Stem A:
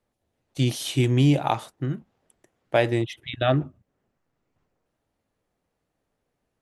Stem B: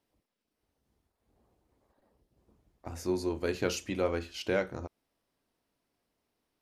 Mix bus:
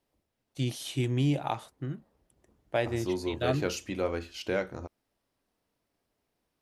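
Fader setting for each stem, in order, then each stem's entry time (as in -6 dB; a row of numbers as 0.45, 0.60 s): -8.0, -0.5 dB; 0.00, 0.00 s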